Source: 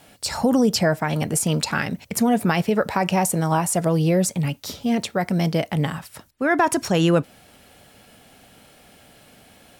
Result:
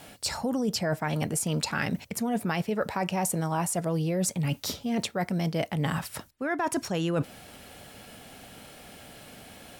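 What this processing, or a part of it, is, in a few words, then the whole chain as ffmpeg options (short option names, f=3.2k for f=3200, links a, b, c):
compression on the reversed sound: -af "areverse,acompressor=threshold=-29dB:ratio=6,areverse,volume=3dB"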